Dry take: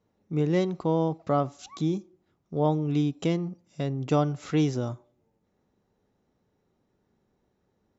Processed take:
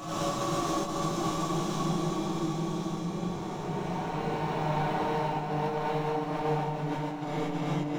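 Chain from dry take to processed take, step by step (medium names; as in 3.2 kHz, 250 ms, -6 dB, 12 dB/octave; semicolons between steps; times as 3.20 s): spectrogram pixelated in time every 200 ms; high-order bell 1.1 kHz +11 dB; waveshaping leveller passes 3; peak limiter -23 dBFS, peak gain reduction 12 dB; harmonic tremolo 3.3 Hz, depth 100%, crossover 660 Hz; saturation -30 dBFS, distortion -14 dB; Paulstretch 5.3×, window 1.00 s, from 1.62 s; compressor with a negative ratio -38 dBFS, ratio -0.5; echo whose repeats swap between lows and highs 550 ms, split 1.1 kHz, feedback 74%, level -7.5 dB; gated-style reverb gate 170 ms rising, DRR -7.5 dB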